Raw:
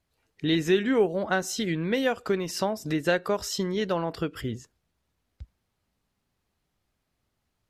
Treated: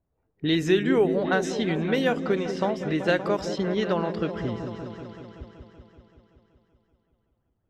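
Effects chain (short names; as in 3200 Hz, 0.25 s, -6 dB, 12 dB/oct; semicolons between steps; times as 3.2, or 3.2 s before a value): low-pass opened by the level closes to 800 Hz, open at -20.5 dBFS; repeats that get brighter 0.19 s, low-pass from 400 Hz, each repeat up 1 oct, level -6 dB; gain +1 dB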